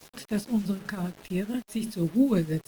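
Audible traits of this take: tremolo triangle 6 Hz, depth 85%; a quantiser's noise floor 8-bit, dither none; Opus

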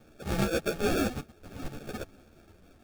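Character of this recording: aliases and images of a low sample rate 1 kHz, jitter 0%; a shimmering, thickened sound

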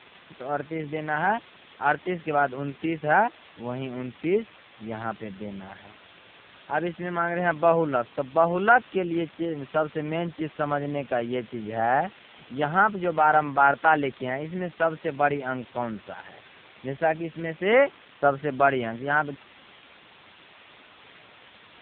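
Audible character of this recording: a quantiser's noise floor 6-bit, dither triangular; AMR-NB

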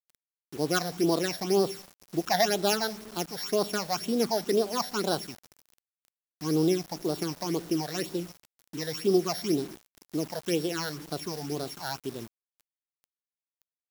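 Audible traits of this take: a buzz of ramps at a fixed pitch in blocks of 8 samples; phasing stages 8, 2 Hz, lowest notch 330–2200 Hz; a quantiser's noise floor 8-bit, dither none

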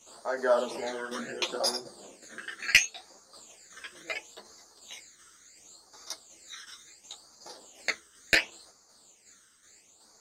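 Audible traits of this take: phasing stages 12, 0.71 Hz, lowest notch 760–2900 Hz; tremolo saw down 2.7 Hz, depth 50%; a shimmering, thickened sound

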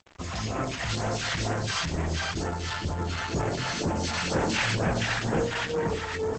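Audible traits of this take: phasing stages 2, 2.1 Hz, lowest notch 310–4100 Hz; a quantiser's noise floor 8-bit, dither none; Opus

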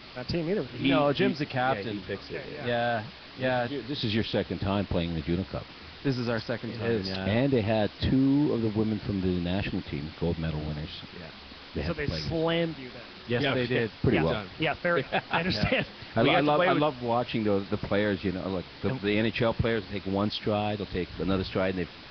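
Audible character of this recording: a quantiser's noise floor 6-bit, dither triangular; Nellymoser

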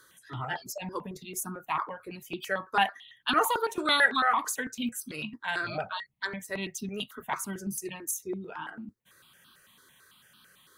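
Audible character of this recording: notches that jump at a steady rate 9 Hz 720–2000 Hz

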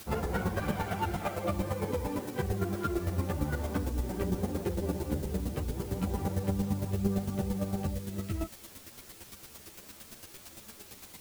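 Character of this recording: a quantiser's noise floor 8-bit, dither triangular; chopped level 8.8 Hz, depth 60%, duty 15%; a shimmering, thickened sound

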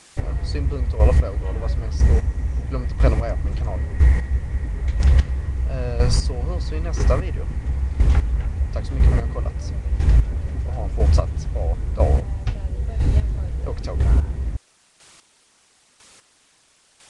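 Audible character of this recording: a quantiser's noise floor 8-bit, dither triangular; chopped level 1 Hz, depth 65%, duty 20%; Nellymoser

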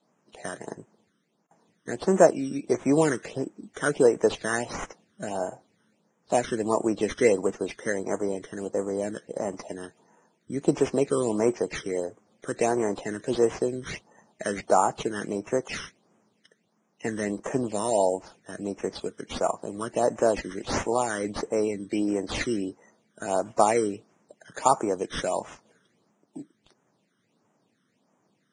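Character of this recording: aliases and images of a low sample rate 8.1 kHz, jitter 0%; phasing stages 12, 1.5 Hz, lowest notch 760–4200 Hz; Vorbis

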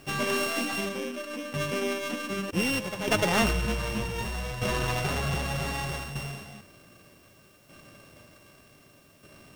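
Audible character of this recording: a buzz of ramps at a fixed pitch in blocks of 16 samples; tremolo saw down 0.65 Hz, depth 65%; a quantiser's noise floor 12-bit, dither triangular; IMA ADPCM

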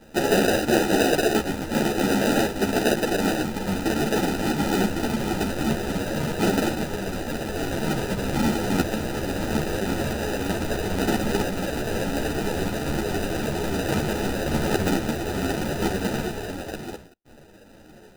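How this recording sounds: aliases and images of a low sample rate 1.1 kHz, jitter 0%; a shimmering, thickened sound

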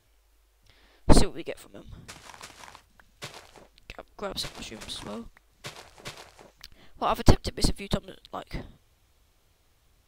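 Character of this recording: noise floor -66 dBFS; spectral tilt -5.0 dB/octave

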